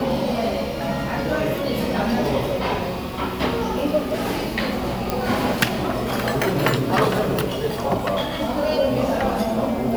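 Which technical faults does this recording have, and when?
5.1 pop

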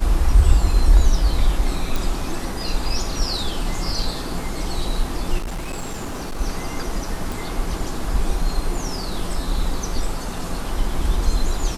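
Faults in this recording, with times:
1.96 pop
5.38–6.41 clipped -23.5 dBFS
7.32 pop

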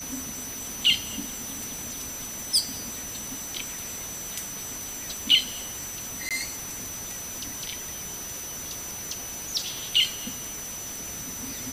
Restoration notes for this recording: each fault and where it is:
tone 6000 Hz -36 dBFS
6.29–6.31 gap 17 ms

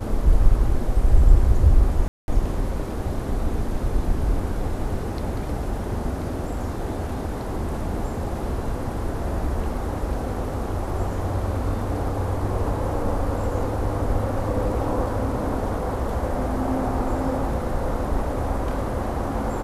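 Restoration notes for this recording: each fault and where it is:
2.08–2.28 gap 0.201 s

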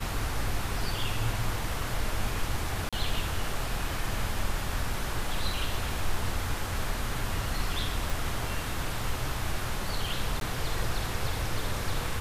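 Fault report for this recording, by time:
2.89–2.93 gap 36 ms
8.1 pop
10.4–10.41 gap 12 ms

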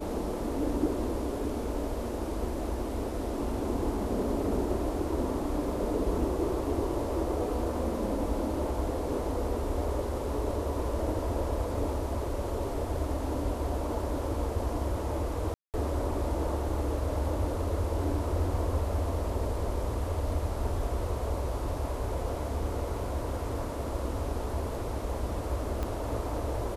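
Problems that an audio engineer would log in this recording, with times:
15.54–15.74 gap 0.198 s
25.83 pop -20 dBFS

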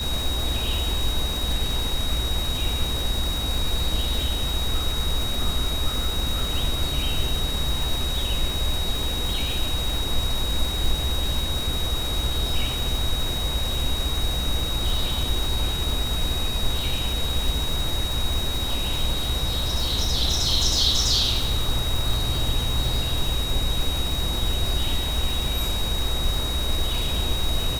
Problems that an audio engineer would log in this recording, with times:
crackle 440/s -28 dBFS
tone 3800 Hz -28 dBFS

